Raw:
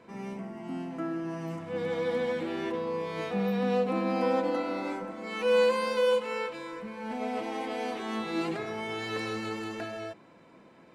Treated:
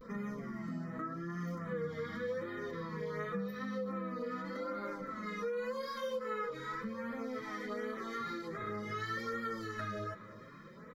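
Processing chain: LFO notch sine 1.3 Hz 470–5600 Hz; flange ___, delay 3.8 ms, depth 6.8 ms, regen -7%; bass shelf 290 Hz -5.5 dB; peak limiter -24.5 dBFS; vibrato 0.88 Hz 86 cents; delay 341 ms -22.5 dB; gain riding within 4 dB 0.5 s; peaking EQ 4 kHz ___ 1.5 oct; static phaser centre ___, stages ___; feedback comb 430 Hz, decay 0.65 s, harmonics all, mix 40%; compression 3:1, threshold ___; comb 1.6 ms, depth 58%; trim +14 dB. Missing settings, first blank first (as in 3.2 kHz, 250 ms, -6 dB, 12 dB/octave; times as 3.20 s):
0.64 Hz, -9 dB, 2.7 kHz, 6, -52 dBFS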